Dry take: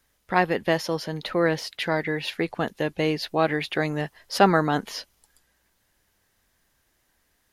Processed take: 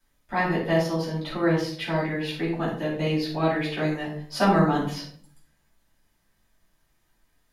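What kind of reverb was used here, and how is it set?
shoebox room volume 530 m³, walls furnished, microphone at 8.5 m; gain -13 dB

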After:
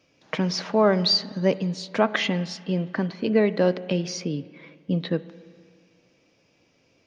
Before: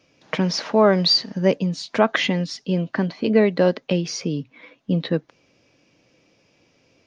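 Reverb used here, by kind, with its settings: spring tank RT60 2 s, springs 33/52 ms, chirp 40 ms, DRR 16 dB; gain -3.5 dB

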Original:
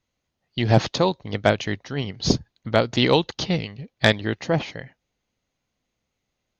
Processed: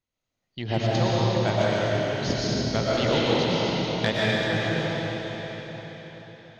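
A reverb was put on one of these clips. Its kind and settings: digital reverb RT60 4.9 s, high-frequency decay 0.95×, pre-delay 75 ms, DRR -8 dB; gain -10 dB

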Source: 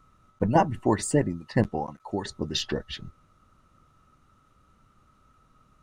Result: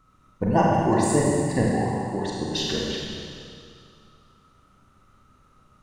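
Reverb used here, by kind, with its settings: Schroeder reverb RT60 2.3 s, combs from 32 ms, DRR -4 dB; gain -1.5 dB

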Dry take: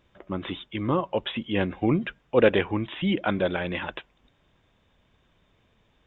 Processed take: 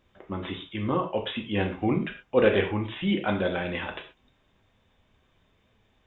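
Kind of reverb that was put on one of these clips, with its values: non-linear reverb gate 0.15 s falling, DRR 2 dB; gain -3 dB

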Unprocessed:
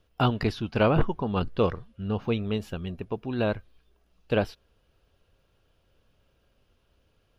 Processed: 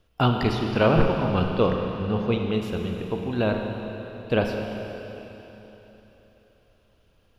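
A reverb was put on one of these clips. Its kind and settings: Schroeder reverb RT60 3.6 s, combs from 33 ms, DRR 2.5 dB; gain +2 dB

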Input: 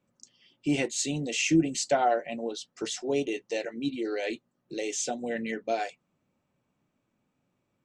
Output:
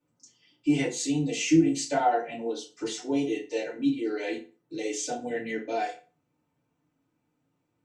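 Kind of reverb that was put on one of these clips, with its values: FDN reverb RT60 0.36 s, low-frequency decay 1×, high-frequency decay 0.75×, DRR -9 dB; gain -10 dB

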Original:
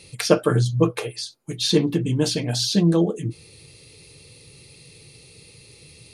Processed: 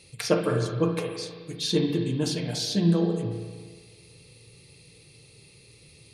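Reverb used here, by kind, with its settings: spring tank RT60 1.6 s, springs 35/53 ms, chirp 40 ms, DRR 3.5 dB; gain -6.5 dB

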